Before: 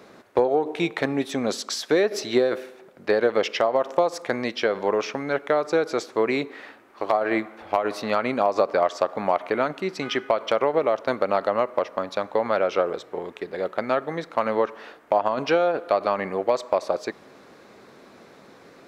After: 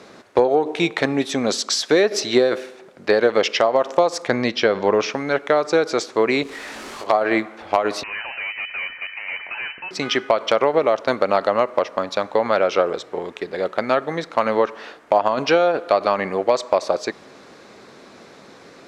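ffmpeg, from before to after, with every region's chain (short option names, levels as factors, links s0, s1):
-filter_complex "[0:a]asettb=1/sr,asplit=3[s0][s1][s2];[s0]atrim=end=4.284[s3];[s1]atrim=start=4.28:end=5.1,asetpts=PTS-STARTPTS,afade=t=in:d=0.004:c=qsin,afade=t=out:st=0.816:d=0.004:c=qsin,lowpass=6600,lowshelf=f=190:g=8[s4];[s2]atrim=start=5.096[s5];[s3][s4]acrossfade=d=0.004:c1=hsin:c2=qsin[s6];[s6][s5]acrossfade=d=0.004:c1=qsin:c2=hsin,asettb=1/sr,asplit=3[s7][s8][s9];[s7]atrim=end=6.434[s10];[s8]atrim=start=6.43:end=7.07,asetpts=PTS-STARTPTS,afade=t=in:d=0.004:c=qsin,afade=t=out:st=0.636:d=0.004:c=qsin,aeval=exprs='val(0)+0.5*0.015*sgn(val(0))':c=same,acompressor=threshold=0.01:ratio=2.5:attack=3.2:release=140:knee=1:detection=peak,asplit=2[s11][s12];[s12]adelay=22,volume=0.631[s13];[s11][s13]amix=inputs=2:normalize=0,atrim=end_sample=28224[s14];[s9]atrim=start=7.066[s15];[s10][s14]acrossfade=d=0.004:c1=hsin:c2=qsin[s16];[s16][s15]acrossfade=d=0.004:c1=qsin:c2=hsin,asettb=1/sr,asplit=3[s17][s18][s19];[s17]atrim=end=8.034[s20];[s18]atrim=start=8.03:end=9.91,asetpts=PTS-STARTPTS,afade=t=in:d=0.004:c=qsin,afade=t=out:st=1.876:d=0.004:c=qsin,highpass=610,aeval=exprs='(tanh(35.5*val(0)+0.25)-tanh(0.25))/35.5':c=same,lowpass=f=2600:t=q:w=0.5098,lowpass=f=2600:t=q:w=0.6013,lowpass=f=2600:t=q:w=0.9,lowpass=f=2600:t=q:w=2.563,afreqshift=-3000[s21];[s19]atrim=start=9.906[s22];[s20][s21]acrossfade=d=0.004:c1=hsin:c2=qsin[s23];[s23][s22]acrossfade=d=0.004:c1=qsin:c2=hsin,lowpass=7000,highshelf=f=4700:g=10,volume=1.58"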